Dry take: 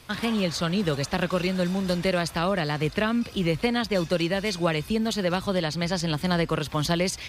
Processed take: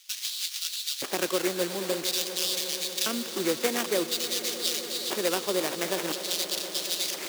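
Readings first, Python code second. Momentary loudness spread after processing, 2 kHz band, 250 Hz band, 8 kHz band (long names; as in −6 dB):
3 LU, −5.0 dB, −9.5 dB, +8.0 dB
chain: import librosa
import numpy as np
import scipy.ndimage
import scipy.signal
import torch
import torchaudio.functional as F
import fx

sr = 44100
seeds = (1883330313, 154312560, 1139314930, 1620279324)

y = fx.sample_hold(x, sr, seeds[0], rate_hz=4200.0, jitter_pct=20)
y = fx.filter_lfo_highpass(y, sr, shape='square', hz=0.49, low_hz=350.0, high_hz=3900.0, q=2.4)
y = fx.high_shelf(y, sr, hz=2400.0, db=11.0)
y = fx.echo_swell(y, sr, ms=119, loudest=5, wet_db=-16.5)
y = y * librosa.db_to_amplitude(-6.5)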